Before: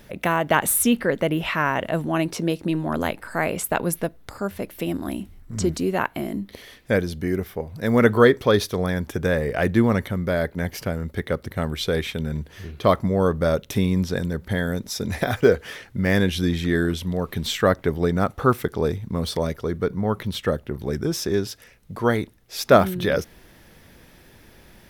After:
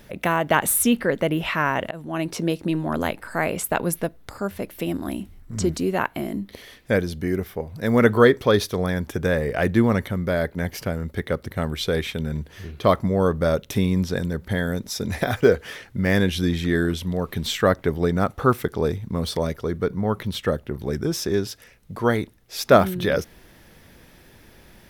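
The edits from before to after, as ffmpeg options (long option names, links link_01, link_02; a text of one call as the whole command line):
ffmpeg -i in.wav -filter_complex "[0:a]asplit=2[link_01][link_02];[link_01]atrim=end=1.91,asetpts=PTS-STARTPTS,afade=type=out:start_time=1.906:duration=0.004:curve=hsin:silence=0.11885[link_03];[link_02]atrim=start=1.91,asetpts=PTS-STARTPTS,afade=type=in:duration=0.46:silence=0.11885[link_04];[link_03][link_04]concat=n=2:v=0:a=1" out.wav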